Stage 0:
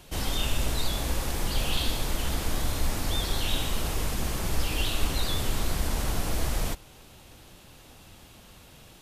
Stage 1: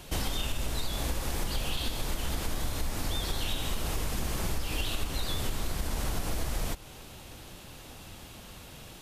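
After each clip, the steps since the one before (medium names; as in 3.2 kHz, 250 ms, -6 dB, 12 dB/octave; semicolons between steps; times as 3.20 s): compression, threshold -31 dBFS, peak gain reduction 12.5 dB; trim +4 dB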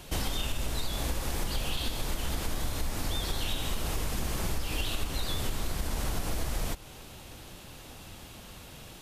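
no audible change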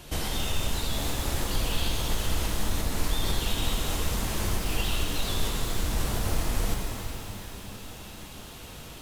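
pitch-shifted reverb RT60 3 s, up +12 st, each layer -8 dB, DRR -0.5 dB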